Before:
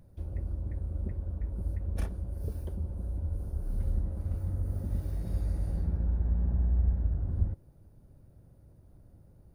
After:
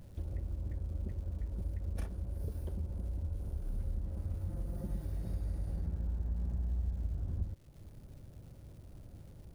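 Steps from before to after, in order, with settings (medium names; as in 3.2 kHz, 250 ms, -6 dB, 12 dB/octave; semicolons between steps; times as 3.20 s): 4.49–5.05 s: comb 5.8 ms, depth 69%; compression 2.5:1, threshold -43 dBFS, peak gain reduction 15 dB; crackle 400 per s -61 dBFS; trim +4.5 dB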